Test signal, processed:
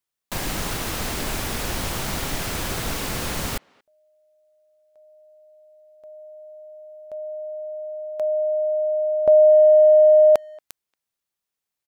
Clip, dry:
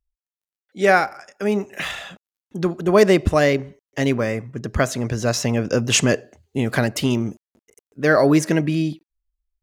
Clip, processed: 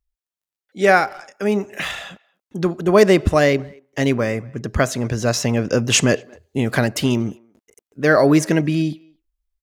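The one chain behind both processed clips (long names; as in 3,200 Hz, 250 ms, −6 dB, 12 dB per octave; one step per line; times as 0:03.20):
far-end echo of a speakerphone 230 ms, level −27 dB
level +1.5 dB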